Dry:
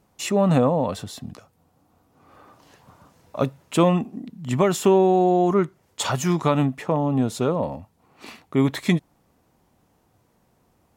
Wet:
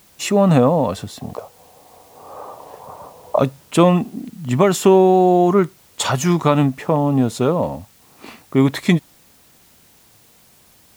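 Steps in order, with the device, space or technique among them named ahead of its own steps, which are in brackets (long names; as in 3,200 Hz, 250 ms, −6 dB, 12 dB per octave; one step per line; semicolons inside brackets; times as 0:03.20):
0:01.21–0:03.39: flat-topped bell 680 Hz +15 dB
plain cassette with noise reduction switched in (one half of a high-frequency compander decoder only; tape wow and flutter 13 cents; white noise bed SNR 34 dB)
level +5 dB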